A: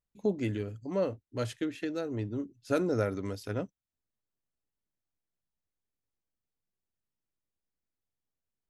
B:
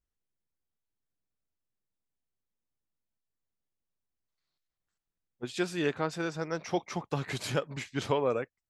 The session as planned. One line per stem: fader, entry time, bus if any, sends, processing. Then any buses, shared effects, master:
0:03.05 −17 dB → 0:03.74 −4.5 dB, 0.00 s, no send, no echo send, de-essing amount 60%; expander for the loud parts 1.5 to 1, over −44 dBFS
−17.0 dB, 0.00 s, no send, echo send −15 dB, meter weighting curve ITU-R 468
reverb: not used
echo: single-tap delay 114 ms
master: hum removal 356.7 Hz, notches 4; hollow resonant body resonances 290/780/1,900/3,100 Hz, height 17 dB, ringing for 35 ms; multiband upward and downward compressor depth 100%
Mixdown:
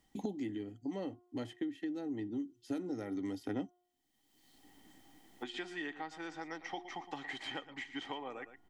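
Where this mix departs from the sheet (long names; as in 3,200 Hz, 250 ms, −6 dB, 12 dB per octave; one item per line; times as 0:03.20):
stem A: missing expander for the loud parts 1.5 to 1, over −44 dBFS
stem B −17.0 dB → −27.0 dB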